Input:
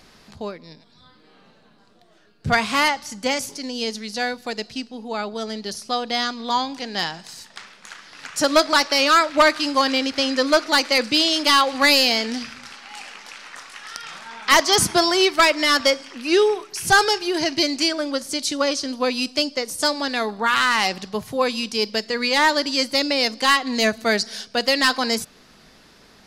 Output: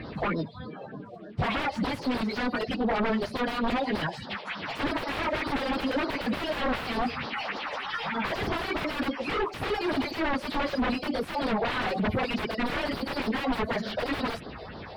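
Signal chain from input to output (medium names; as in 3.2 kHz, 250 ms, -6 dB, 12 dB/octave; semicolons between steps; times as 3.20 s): coarse spectral quantiser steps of 30 dB; high-pass 48 Hz 24 dB/octave; compression 2:1, threshold -30 dBFS, peak gain reduction 10.5 dB; phase shifter stages 4, 1.9 Hz, lowest notch 220–2400 Hz; plain phase-vocoder stretch 0.57×; sine folder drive 20 dB, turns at -18 dBFS; distance through air 430 m; trim -3 dB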